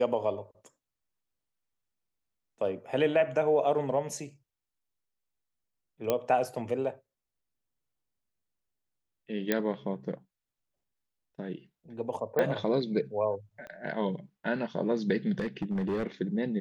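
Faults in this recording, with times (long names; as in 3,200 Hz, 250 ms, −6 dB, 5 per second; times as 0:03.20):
0:06.10: click −13 dBFS
0:09.52: click −12 dBFS
0:12.39: click −16 dBFS
0:13.67: click −31 dBFS
0:15.39–0:16.07: clipping −26.5 dBFS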